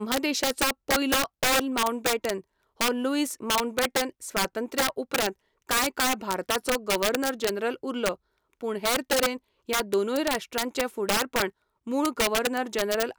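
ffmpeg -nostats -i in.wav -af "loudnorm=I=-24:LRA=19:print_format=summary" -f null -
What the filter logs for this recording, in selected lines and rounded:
Input Integrated:    -26.6 LUFS
Input True Peak:     -12.5 dBTP
Input LRA:             1.8 LU
Input Threshold:     -36.8 LUFS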